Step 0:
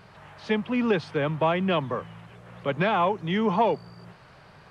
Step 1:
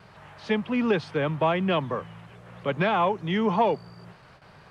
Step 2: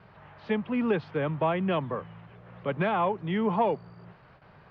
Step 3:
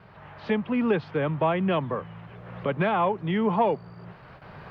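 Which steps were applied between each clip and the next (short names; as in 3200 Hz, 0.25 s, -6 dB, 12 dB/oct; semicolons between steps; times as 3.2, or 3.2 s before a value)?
gate with hold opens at -42 dBFS
air absorption 290 m; gain -2 dB
recorder AGC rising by 9.3 dB/s; gain +2.5 dB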